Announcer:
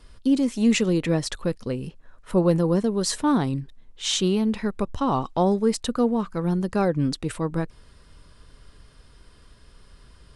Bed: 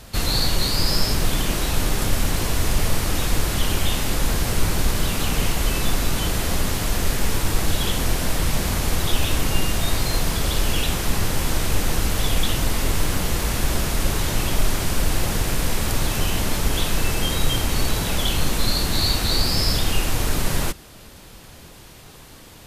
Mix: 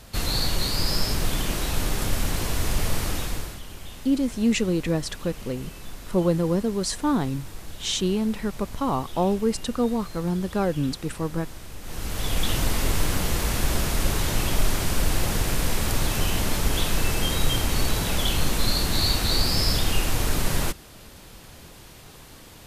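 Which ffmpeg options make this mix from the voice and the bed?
-filter_complex "[0:a]adelay=3800,volume=-2dB[a];[1:a]volume=12.5dB,afade=t=out:st=3.05:d=0.56:silence=0.188365,afade=t=in:st=11.81:d=0.75:silence=0.149624[b];[a][b]amix=inputs=2:normalize=0"

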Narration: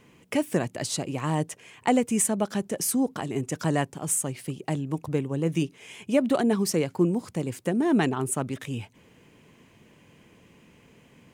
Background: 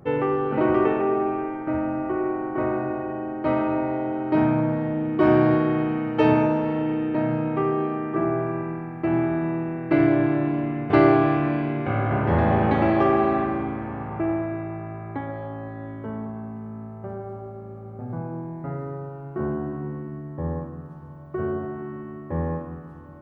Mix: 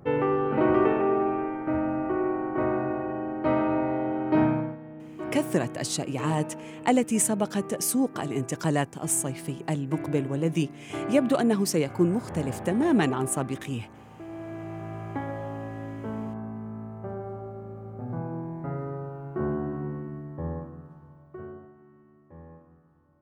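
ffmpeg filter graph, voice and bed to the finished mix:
-filter_complex "[0:a]adelay=5000,volume=0dB[a];[1:a]volume=14dB,afade=t=out:st=4.42:d=0.35:silence=0.16788,afade=t=in:st=14.28:d=0.71:silence=0.16788,afade=t=out:st=19.86:d=1.88:silence=0.105925[b];[a][b]amix=inputs=2:normalize=0"

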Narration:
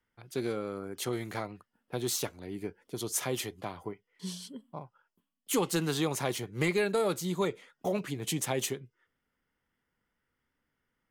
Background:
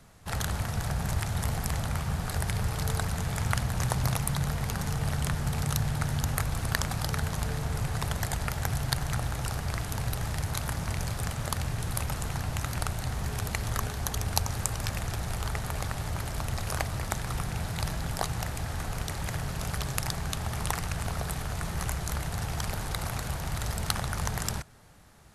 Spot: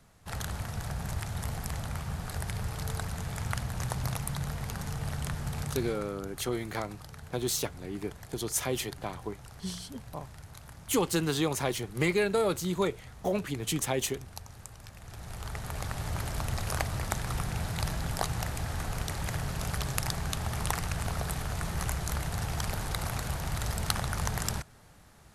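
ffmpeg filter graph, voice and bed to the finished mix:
-filter_complex "[0:a]adelay=5400,volume=1.5dB[a];[1:a]volume=11dB,afade=t=out:st=5.61:d=0.52:silence=0.266073,afade=t=in:st=14.99:d=1.2:silence=0.158489[b];[a][b]amix=inputs=2:normalize=0"

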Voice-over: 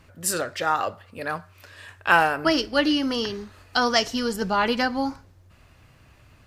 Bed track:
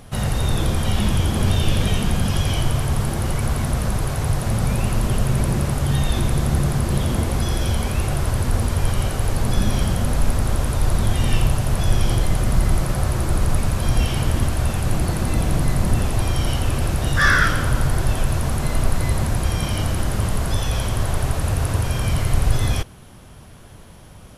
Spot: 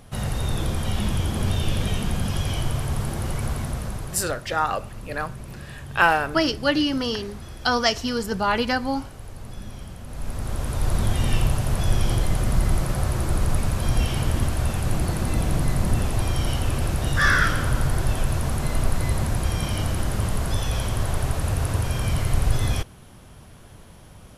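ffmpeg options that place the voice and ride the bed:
-filter_complex "[0:a]adelay=3900,volume=0dB[a];[1:a]volume=10dB,afade=t=out:st=3.46:d=0.97:silence=0.223872,afade=t=in:st=10.06:d=0.93:silence=0.177828[b];[a][b]amix=inputs=2:normalize=0"

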